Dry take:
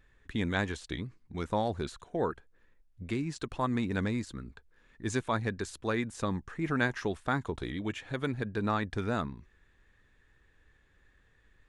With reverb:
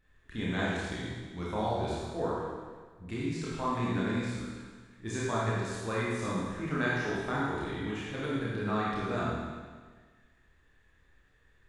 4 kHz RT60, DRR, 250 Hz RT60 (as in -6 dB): 1.5 s, -7.5 dB, 1.5 s